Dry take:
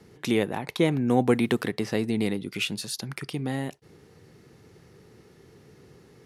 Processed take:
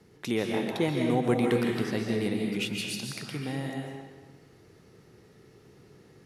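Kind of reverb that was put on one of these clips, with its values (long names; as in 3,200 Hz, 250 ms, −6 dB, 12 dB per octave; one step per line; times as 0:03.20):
comb and all-pass reverb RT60 1.4 s, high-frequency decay 0.85×, pre-delay 105 ms, DRR 0 dB
level −5 dB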